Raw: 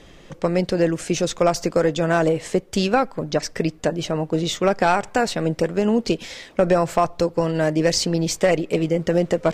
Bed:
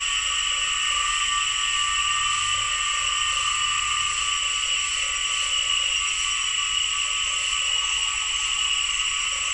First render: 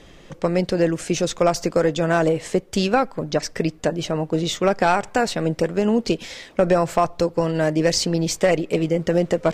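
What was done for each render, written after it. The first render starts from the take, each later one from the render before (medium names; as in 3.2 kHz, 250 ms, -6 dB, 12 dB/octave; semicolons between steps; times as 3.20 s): no audible change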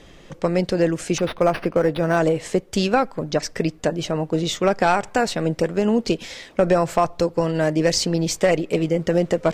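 1.18–2.17 s: decimation joined by straight lines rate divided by 6×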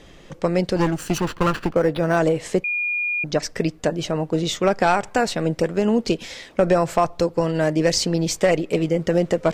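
0.76–1.74 s: comb filter that takes the minimum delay 0.69 ms; 2.64–3.24 s: bleep 2.43 kHz -20.5 dBFS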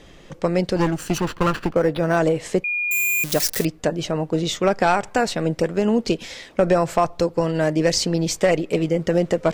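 2.91–3.65 s: zero-crossing glitches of -14.5 dBFS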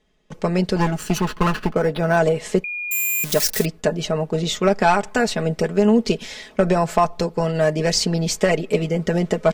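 gate with hold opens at -34 dBFS; comb 4.7 ms, depth 62%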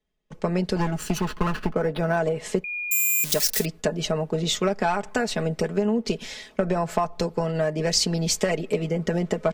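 compression, threshold -20 dBFS, peak gain reduction 9 dB; three bands expanded up and down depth 40%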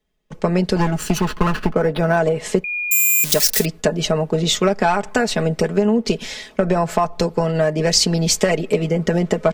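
trim +6.5 dB; peak limiter -2 dBFS, peak gain reduction 1.5 dB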